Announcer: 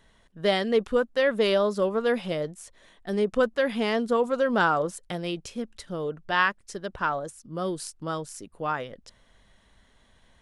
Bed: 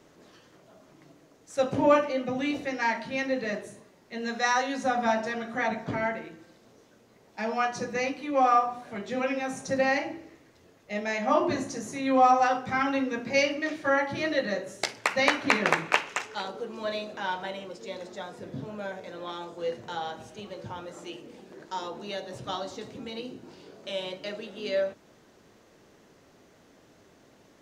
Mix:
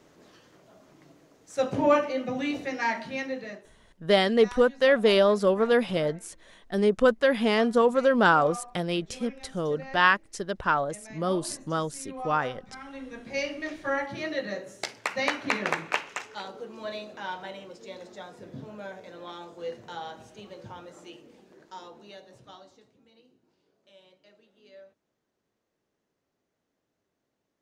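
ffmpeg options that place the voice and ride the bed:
-filter_complex "[0:a]adelay=3650,volume=1.33[s0];[1:a]volume=4.47,afade=t=out:st=3.02:d=0.68:silence=0.141254,afade=t=in:st=12.85:d=0.81:silence=0.211349,afade=t=out:st=20.63:d=2.33:silence=0.112202[s1];[s0][s1]amix=inputs=2:normalize=0"

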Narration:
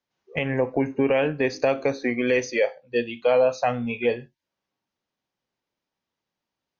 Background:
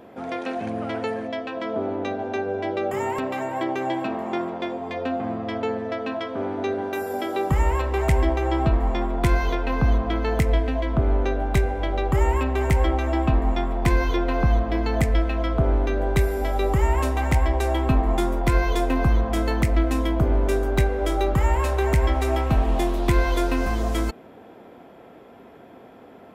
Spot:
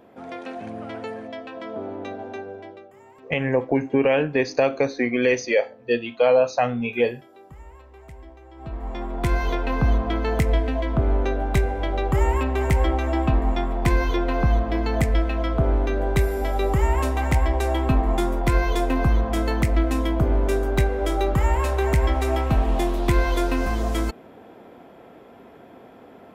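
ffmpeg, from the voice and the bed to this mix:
-filter_complex "[0:a]adelay=2950,volume=1.26[s0];[1:a]volume=7.94,afade=t=out:st=2.24:d=0.64:silence=0.125893,afade=t=in:st=8.55:d=1:silence=0.0668344[s1];[s0][s1]amix=inputs=2:normalize=0"

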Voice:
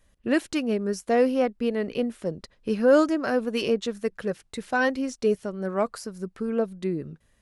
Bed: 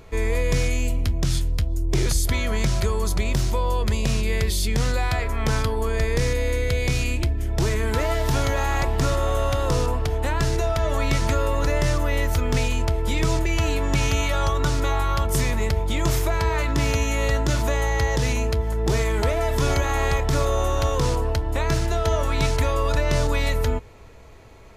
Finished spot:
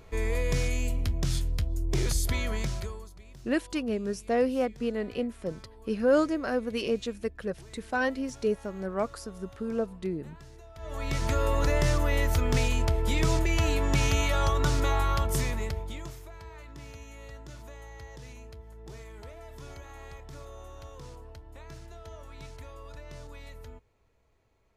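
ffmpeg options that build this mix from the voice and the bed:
-filter_complex "[0:a]adelay=3200,volume=0.596[s0];[1:a]volume=7.94,afade=t=out:st=2.42:d=0.68:silence=0.0841395,afade=t=in:st=10.74:d=0.76:silence=0.0630957,afade=t=out:st=15.05:d=1.1:silence=0.1[s1];[s0][s1]amix=inputs=2:normalize=0"

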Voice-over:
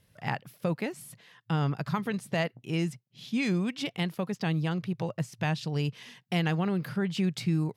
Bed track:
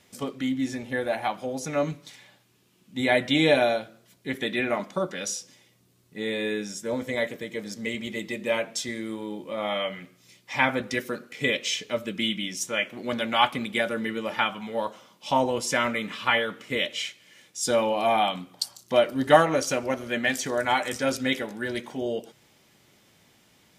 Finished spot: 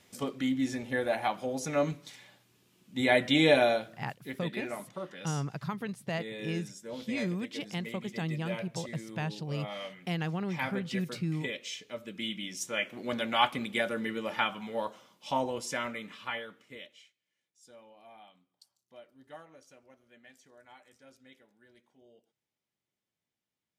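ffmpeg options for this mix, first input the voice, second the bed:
-filter_complex "[0:a]adelay=3750,volume=0.531[s0];[1:a]volume=1.78,afade=t=out:st=3.9:d=0.48:silence=0.334965,afade=t=in:st=11.98:d=0.94:silence=0.421697,afade=t=out:st=14.63:d=2.47:silence=0.0446684[s1];[s0][s1]amix=inputs=2:normalize=0"

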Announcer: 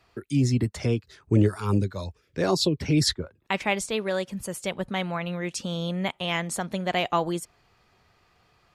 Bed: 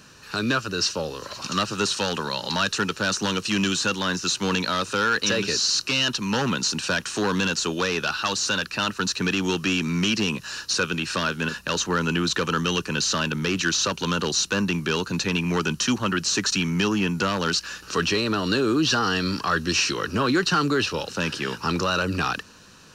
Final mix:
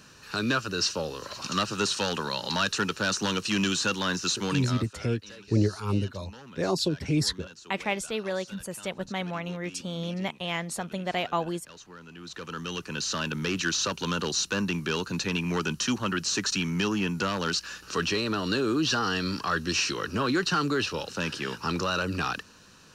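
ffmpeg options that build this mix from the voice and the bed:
-filter_complex "[0:a]adelay=4200,volume=0.668[s0];[1:a]volume=6.31,afade=t=out:st=4.29:d=0.65:silence=0.0944061,afade=t=in:st=12.14:d=1.27:silence=0.112202[s1];[s0][s1]amix=inputs=2:normalize=0"

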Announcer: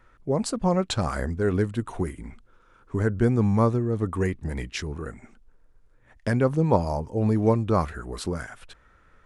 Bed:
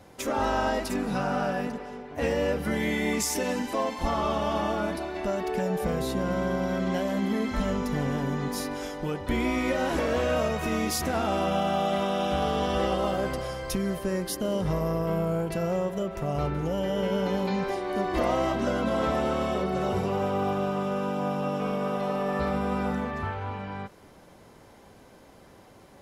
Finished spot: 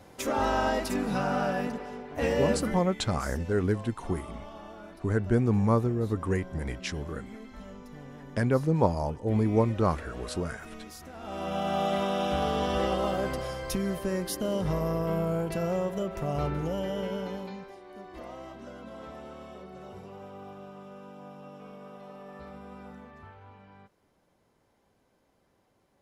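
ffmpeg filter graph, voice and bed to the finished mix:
-filter_complex "[0:a]adelay=2100,volume=0.708[s0];[1:a]volume=5.96,afade=t=out:st=2.56:d=0.28:silence=0.141254,afade=t=in:st=11.18:d=0.64:silence=0.158489,afade=t=out:st=16.55:d=1.14:silence=0.158489[s1];[s0][s1]amix=inputs=2:normalize=0"

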